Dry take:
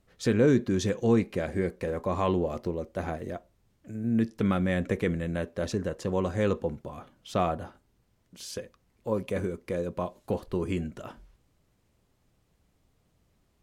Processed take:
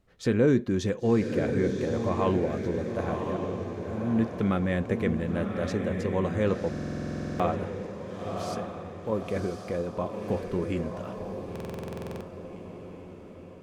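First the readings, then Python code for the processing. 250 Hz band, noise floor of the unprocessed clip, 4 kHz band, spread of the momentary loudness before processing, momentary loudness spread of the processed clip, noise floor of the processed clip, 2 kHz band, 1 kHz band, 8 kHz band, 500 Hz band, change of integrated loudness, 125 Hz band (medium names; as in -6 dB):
+1.5 dB, -70 dBFS, -1.5 dB, 15 LU, 12 LU, -45 dBFS, +0.5 dB, +1.0 dB, -3.0 dB, +1.5 dB, 0.0 dB, +1.5 dB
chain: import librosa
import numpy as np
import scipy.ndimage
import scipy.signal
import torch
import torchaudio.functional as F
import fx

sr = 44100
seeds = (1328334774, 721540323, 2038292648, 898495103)

y = fx.high_shelf(x, sr, hz=4600.0, db=-7.0)
y = fx.echo_diffused(y, sr, ms=1058, feedback_pct=50, wet_db=-5.0)
y = fx.buffer_glitch(y, sr, at_s=(6.7, 11.51), block=2048, repeats=14)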